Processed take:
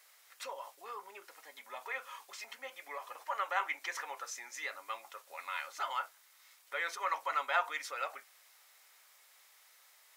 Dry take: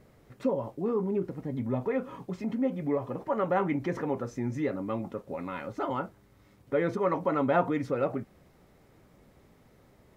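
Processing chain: Bessel high-pass 1300 Hz, order 4; high shelf 2800 Hz +12 dB; gain +1 dB

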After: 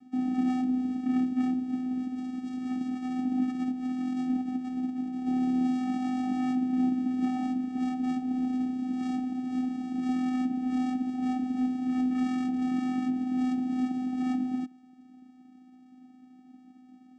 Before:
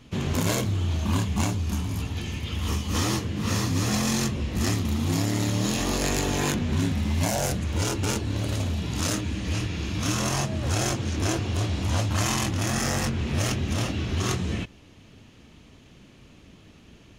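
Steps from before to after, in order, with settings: LPF 2000 Hz 6 dB/oct; 2.8–5.26 negative-ratio compressor -28 dBFS, ratio -0.5; vocoder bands 4, square 254 Hz

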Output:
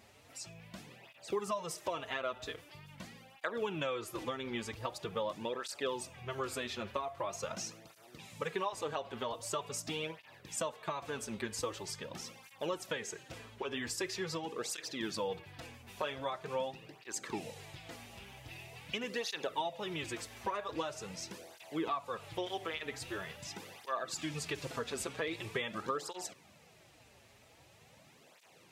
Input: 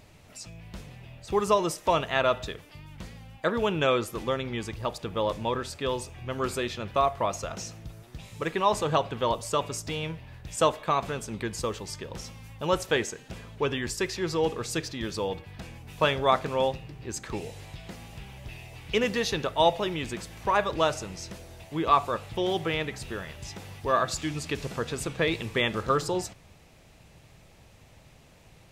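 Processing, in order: HPF 290 Hz 6 dB/oct; compressor 12:1, threshold -30 dBFS, peak gain reduction 15 dB; tape flanging out of phase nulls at 0.44 Hz, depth 6.8 ms

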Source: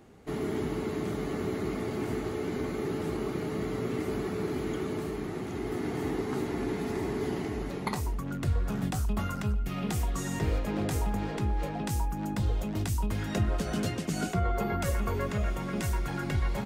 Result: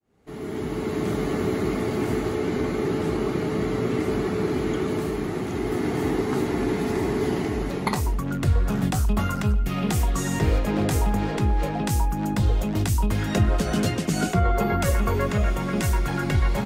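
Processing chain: opening faded in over 1.12 s; 2.35–4.88 high shelf 12000 Hz -9 dB; gain +7.5 dB

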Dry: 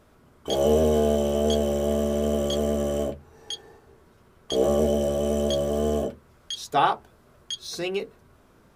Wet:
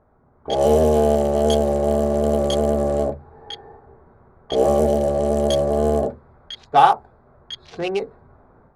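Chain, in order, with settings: Wiener smoothing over 15 samples; AGC gain up to 8 dB; low-pass opened by the level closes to 2100 Hz, open at -12.5 dBFS; thirty-one-band EQ 200 Hz -4 dB, 315 Hz -5 dB, 800 Hz +7 dB, 10000 Hz +8 dB; gain -1.5 dB

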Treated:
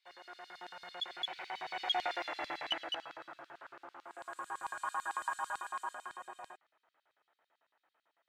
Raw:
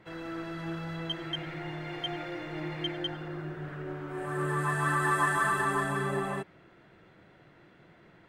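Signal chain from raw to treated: Doppler pass-by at 2.21, 27 m/s, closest 14 m; LFO high-pass square 9 Hz 800–4200 Hz; gain +2.5 dB

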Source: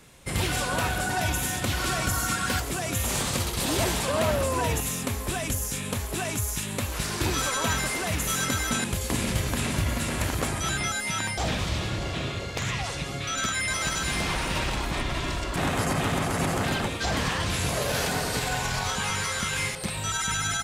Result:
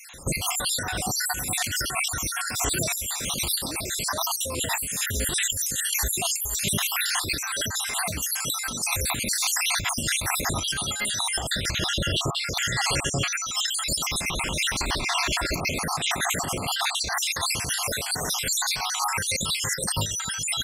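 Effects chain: random spectral dropouts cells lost 63%; high shelf 2000 Hz +9.5 dB; negative-ratio compressor -32 dBFS, ratio -1; gain +4.5 dB

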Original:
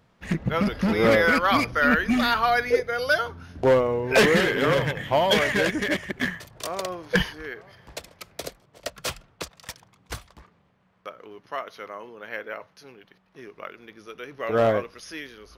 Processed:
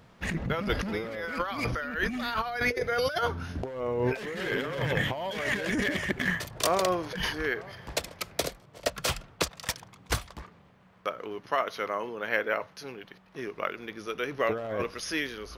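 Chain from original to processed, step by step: 8.46–8.87 harmonic-percussive split percussive -6 dB; negative-ratio compressor -30 dBFS, ratio -1

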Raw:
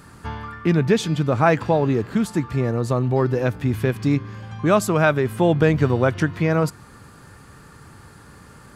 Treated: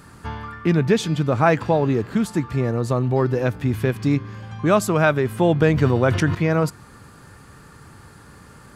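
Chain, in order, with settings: 5.68–6.35 sustainer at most 64 dB/s

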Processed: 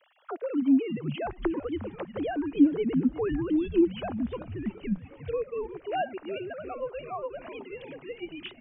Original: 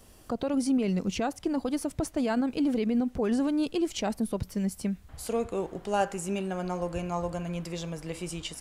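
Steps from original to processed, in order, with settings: sine-wave speech; low-pass opened by the level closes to 2600 Hz; on a send: frequency-shifting echo 0.358 s, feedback 62%, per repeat -120 Hz, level -14.5 dB; on the sum: mismatched tape noise reduction encoder only

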